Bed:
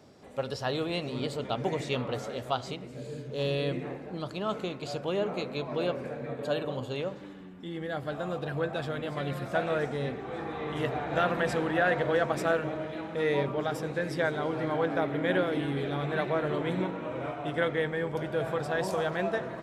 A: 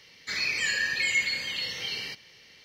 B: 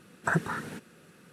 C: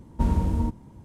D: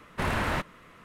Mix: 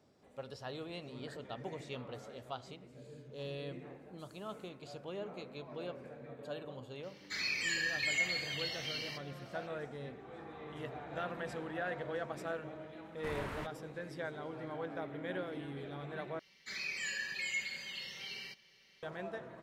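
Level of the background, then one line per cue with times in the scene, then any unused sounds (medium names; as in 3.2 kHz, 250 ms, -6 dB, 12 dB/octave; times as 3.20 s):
bed -13 dB
1.00 s: add B -11 dB + cascade formant filter e
3.99 s: add C -13 dB + inverse Chebyshev high-pass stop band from 1.5 kHz, stop band 70 dB
7.03 s: add A -7.5 dB + high-pass 47 Hz
13.05 s: add D -15 dB
16.39 s: replace with A -12.5 dB + comb 5.2 ms, depth 59%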